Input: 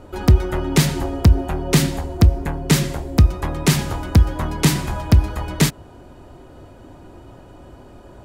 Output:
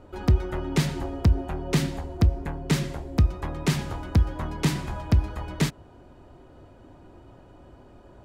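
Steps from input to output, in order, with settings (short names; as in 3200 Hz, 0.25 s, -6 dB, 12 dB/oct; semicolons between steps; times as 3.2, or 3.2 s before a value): high shelf 7300 Hz -10 dB; gain -7.5 dB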